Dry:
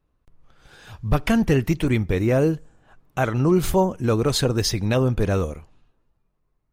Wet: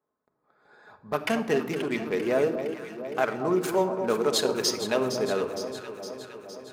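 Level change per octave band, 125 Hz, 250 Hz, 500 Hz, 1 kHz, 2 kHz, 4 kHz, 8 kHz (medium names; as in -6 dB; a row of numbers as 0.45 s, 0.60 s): -18.5 dB, -8.0 dB, -2.0 dB, -2.5 dB, -2.5 dB, -2.0 dB, -2.0 dB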